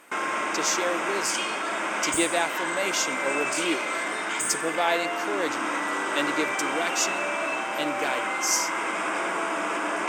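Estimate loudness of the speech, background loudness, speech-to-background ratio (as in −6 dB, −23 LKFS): −29.0 LKFS, −27.5 LKFS, −1.5 dB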